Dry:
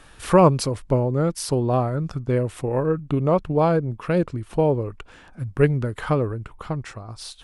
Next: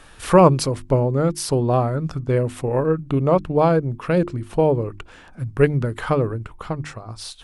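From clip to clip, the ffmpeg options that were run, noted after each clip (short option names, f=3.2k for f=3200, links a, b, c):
-af "bandreject=f=50:t=h:w=6,bandreject=f=100:t=h:w=6,bandreject=f=150:t=h:w=6,bandreject=f=200:t=h:w=6,bandreject=f=250:t=h:w=6,bandreject=f=300:t=h:w=6,bandreject=f=350:t=h:w=6,volume=2.5dB"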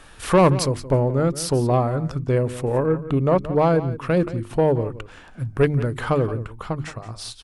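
-af "asoftclip=type=tanh:threshold=-8dB,aecho=1:1:174:0.178"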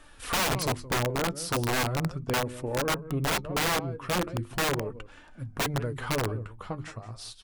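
-af "flanger=delay=3.3:depth=7.1:regen=49:speed=0.38:shape=sinusoidal,aeval=exprs='(mod(7.94*val(0)+1,2)-1)/7.94':c=same,volume=-3.5dB"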